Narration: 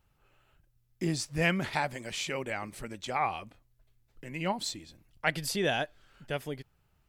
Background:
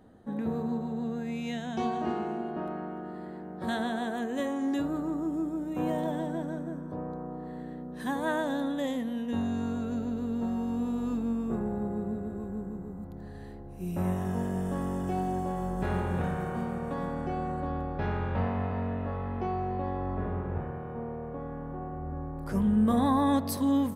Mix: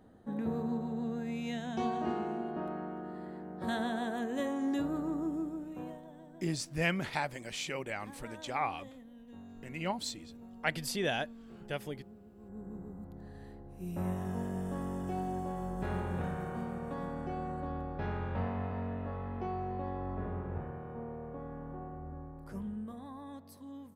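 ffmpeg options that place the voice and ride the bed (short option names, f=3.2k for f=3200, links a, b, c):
-filter_complex "[0:a]adelay=5400,volume=-3.5dB[a];[1:a]volume=11.5dB,afade=t=out:st=5.24:d=0.77:silence=0.141254,afade=t=in:st=12.36:d=0.41:silence=0.188365,afade=t=out:st=21.74:d=1.22:silence=0.149624[b];[a][b]amix=inputs=2:normalize=0"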